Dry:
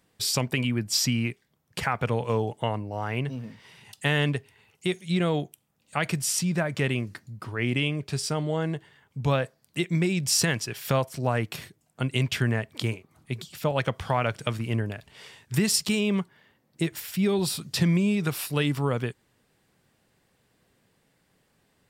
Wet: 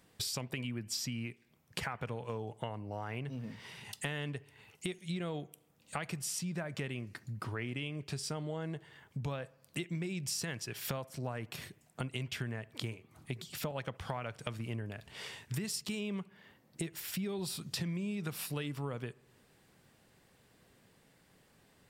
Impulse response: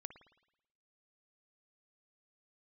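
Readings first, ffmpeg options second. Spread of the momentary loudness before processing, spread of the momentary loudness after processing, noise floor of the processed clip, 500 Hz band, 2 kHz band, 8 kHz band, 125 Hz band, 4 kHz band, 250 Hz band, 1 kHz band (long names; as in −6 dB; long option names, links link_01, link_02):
12 LU, 9 LU, −68 dBFS, −13.0 dB, −12.0 dB, −11.5 dB, −12.5 dB, −11.5 dB, −12.5 dB, −12.5 dB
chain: -filter_complex "[0:a]acompressor=threshold=-39dB:ratio=5,asplit=2[link_01][link_02];[1:a]atrim=start_sample=2205,asetrate=37485,aresample=44100[link_03];[link_02][link_03]afir=irnorm=-1:irlink=0,volume=-7.5dB[link_04];[link_01][link_04]amix=inputs=2:normalize=0"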